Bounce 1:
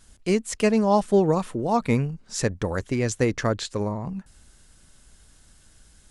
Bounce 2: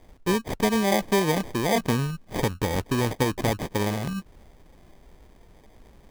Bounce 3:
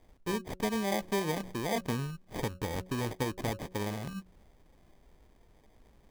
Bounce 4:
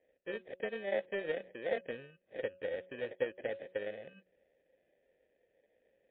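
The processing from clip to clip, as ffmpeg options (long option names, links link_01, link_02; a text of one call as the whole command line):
ffmpeg -i in.wav -af "acrusher=samples=32:mix=1:aa=0.000001,acompressor=threshold=-22dB:ratio=3,volume=2dB" out.wav
ffmpeg -i in.wav -af "bandreject=frequency=184.6:width_type=h:width=4,bandreject=frequency=369.2:width_type=h:width=4,bandreject=frequency=553.8:width_type=h:width=4,volume=-9dB" out.wav
ffmpeg -i in.wav -filter_complex "[0:a]asplit=3[link_01][link_02][link_03];[link_01]bandpass=frequency=530:width_type=q:width=8,volume=0dB[link_04];[link_02]bandpass=frequency=1840:width_type=q:width=8,volume=-6dB[link_05];[link_03]bandpass=frequency=2480:width_type=q:width=8,volume=-9dB[link_06];[link_04][link_05][link_06]amix=inputs=3:normalize=0,aeval=exprs='0.0376*(cos(1*acos(clip(val(0)/0.0376,-1,1)))-cos(1*PI/2))+0.00211*(cos(7*acos(clip(val(0)/0.0376,-1,1)))-cos(7*PI/2))':channel_layout=same,volume=8dB" -ar 8000 -c:a libmp3lame -b:a 32k out.mp3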